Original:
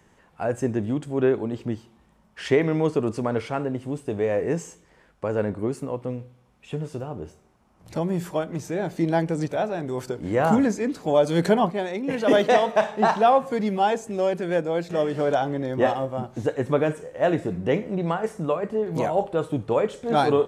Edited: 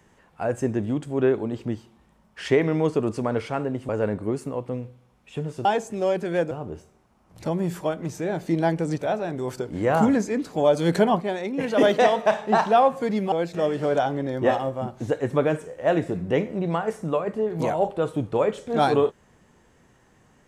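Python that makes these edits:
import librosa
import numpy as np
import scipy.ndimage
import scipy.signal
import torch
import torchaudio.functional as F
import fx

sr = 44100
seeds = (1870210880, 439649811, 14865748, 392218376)

y = fx.edit(x, sr, fx.cut(start_s=3.89, length_s=1.36),
    fx.move(start_s=13.82, length_s=0.86, to_s=7.01), tone=tone)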